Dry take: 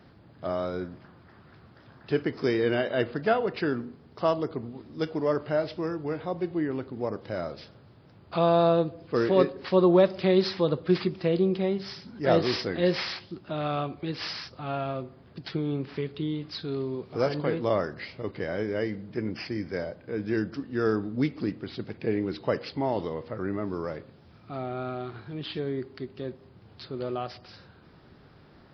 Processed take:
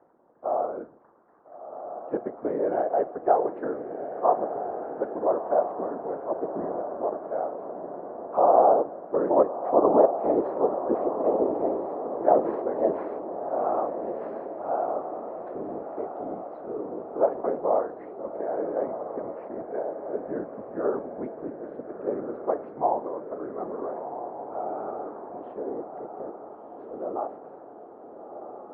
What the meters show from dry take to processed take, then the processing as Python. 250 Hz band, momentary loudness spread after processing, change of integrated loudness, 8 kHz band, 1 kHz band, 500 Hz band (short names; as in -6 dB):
-4.5 dB, 15 LU, +1.0 dB, n/a, +7.0 dB, +2.0 dB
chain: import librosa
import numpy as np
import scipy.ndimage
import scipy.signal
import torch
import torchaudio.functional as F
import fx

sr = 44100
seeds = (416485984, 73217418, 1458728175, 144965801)

y = scipy.signal.sosfilt(scipy.signal.butter(4, 370.0, 'highpass', fs=sr, output='sos'), x)
y = fx.whisperise(y, sr, seeds[0])
y = fx.dynamic_eq(y, sr, hz=780.0, q=1.8, threshold_db=-41.0, ratio=4.0, max_db=7)
y = scipy.signal.sosfilt(scipy.signal.butter(4, 1100.0, 'lowpass', fs=sr, output='sos'), y)
y = fx.echo_diffused(y, sr, ms=1358, feedback_pct=56, wet_db=-8)